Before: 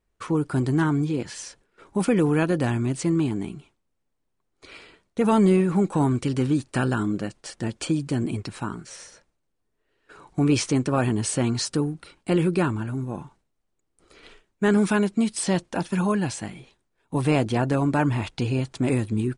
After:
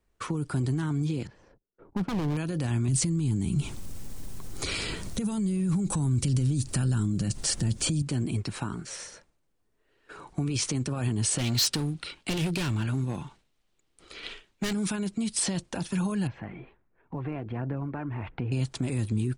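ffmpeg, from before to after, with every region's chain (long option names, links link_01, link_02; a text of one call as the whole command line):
ffmpeg -i in.wav -filter_complex "[0:a]asettb=1/sr,asplit=3[link_01][link_02][link_03];[link_01]atrim=end=1.274[link_04];[link_02]atrim=start=1.27:end=2.37,asetpts=PTS-STARTPTS,afade=type=in:duration=0.004:curve=qsin,afade=type=out:start_time=1.096:duration=0.004:curve=qsin,agate=range=-23dB:threshold=-57dB:ratio=16:release=100:detection=peak,adynamicsmooth=sensitivity=0.5:basefreq=660,aeval=exprs='0.112*(abs(mod(val(0)/0.112+3,4)-2)-1)':channel_layout=same[link_05];[link_03]atrim=start=2.366[link_06];[link_04][link_05]acrossfade=duration=0.004:curve1=hsin:curve2=qsin[link_07];[link_07][link_06]acrossfade=duration=0.004:curve1=qsin:curve2=hsin,asettb=1/sr,asplit=3[link_08][link_09][link_10];[link_08]atrim=end=2.884[link_11];[link_09]atrim=start=2.88:end=8.02,asetpts=PTS-STARTPTS,afade=type=in:duration=0.004:curve=qsin,afade=type=out:start_time=5.136:duration=0.004:curve=qsin,acompressor=mode=upward:threshold=-24dB:ratio=2.5:attack=3.2:release=140:knee=2.83:detection=peak,bass=frequency=250:gain=12,treble=frequency=4000:gain=11[link_12];[link_10]atrim=start=8.016[link_13];[link_11][link_12]acrossfade=duration=0.004:curve1=hsin:curve2=qsin[link_14];[link_14][link_13]acrossfade=duration=0.004:curve1=qsin:curve2=hsin,asettb=1/sr,asplit=3[link_15][link_16][link_17];[link_15]atrim=end=11.384[link_18];[link_16]atrim=start=11.38:end=14.73,asetpts=PTS-STARTPTS,afade=type=in:duration=0.004:curve=qsin,afade=type=out:start_time=3.346:duration=0.004:curve=qsin,equalizer=frequency=3300:width_type=o:width=1.7:gain=10,asoftclip=type=hard:threshold=-23dB[link_19];[link_17]atrim=start=14.726[link_20];[link_18][link_19]acrossfade=duration=0.004:curve1=hsin:curve2=qsin[link_21];[link_21][link_20]acrossfade=duration=0.004:curve1=qsin:curve2=hsin,asettb=1/sr,asplit=3[link_22][link_23][link_24];[link_22]atrim=end=16.274[link_25];[link_23]atrim=start=16.27:end=18.52,asetpts=PTS-STARTPTS,afade=type=in:duration=0.004:curve=qsin,afade=type=out:start_time=2.246:duration=0.004:curve=qsin,lowpass=frequency=2200:width=0.5412,lowpass=frequency=2200:width=1.3066,acompressor=threshold=-40dB:ratio=2:attack=3.2:release=140:knee=1:detection=peak,aphaser=in_gain=1:out_gain=1:delay=3:decay=0.31:speed=1.4:type=sinusoidal[link_26];[link_24]atrim=start=18.516[link_27];[link_25][link_26]acrossfade=duration=0.004:curve1=hsin:curve2=qsin[link_28];[link_28][link_27]acrossfade=duration=0.004:curve1=qsin:curve2=hsin,alimiter=limit=-20dB:level=0:latency=1:release=17,acrossover=split=180|3000[link_29][link_30][link_31];[link_30]acompressor=threshold=-36dB:ratio=6[link_32];[link_29][link_32][link_31]amix=inputs=3:normalize=0,volume=2.5dB" out.wav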